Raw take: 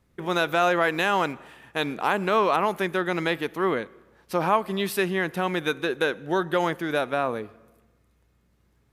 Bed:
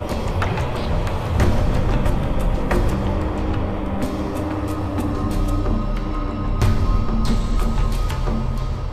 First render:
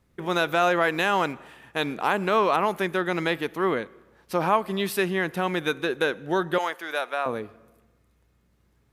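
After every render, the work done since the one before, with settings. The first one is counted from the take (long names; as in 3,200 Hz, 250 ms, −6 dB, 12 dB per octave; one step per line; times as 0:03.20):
0:06.58–0:07.26: high-pass filter 660 Hz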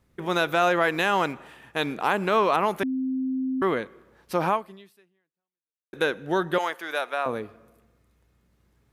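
0:02.83–0:03.62: beep over 261 Hz −24 dBFS
0:04.49–0:05.93: fade out exponential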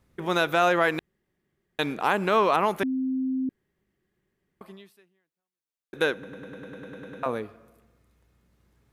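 0:00.99–0:01.79: fill with room tone
0:03.49–0:04.61: fill with room tone
0:06.13: stutter in place 0.10 s, 11 plays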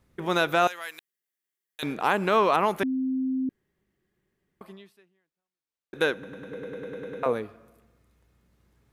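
0:00.67–0:01.83: first difference
0:04.73–0:05.96: high-shelf EQ 8,600 Hz −8.5 dB
0:06.51–0:07.33: hollow resonant body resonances 450/2,100 Hz, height 10 dB, ringing for 30 ms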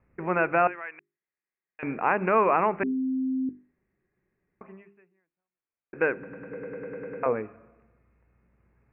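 Butterworth low-pass 2,600 Hz 96 dB per octave
mains-hum notches 50/100/150/200/250/300/350/400 Hz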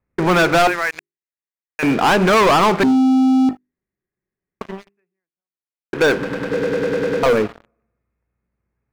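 leveller curve on the samples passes 5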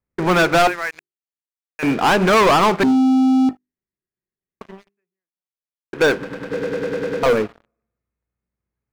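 expander for the loud parts 1.5 to 1, over −28 dBFS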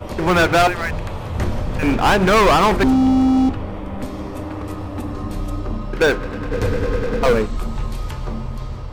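mix in bed −4.5 dB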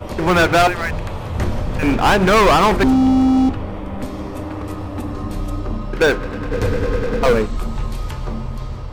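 level +1 dB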